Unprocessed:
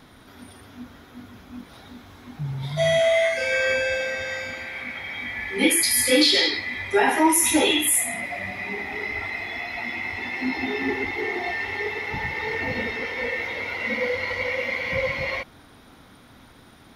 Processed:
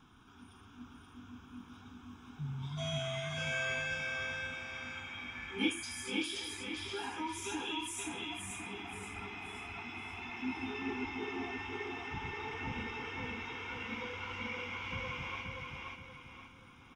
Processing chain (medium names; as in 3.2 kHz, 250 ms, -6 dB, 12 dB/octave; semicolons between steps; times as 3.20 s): tone controls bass -2 dB, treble -4 dB; 5.69–7.98 s: compression, threshold -25 dBFS, peak gain reduction 11.5 dB; static phaser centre 2.9 kHz, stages 8; feedback delay 527 ms, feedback 39%, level -3 dB; trim -8 dB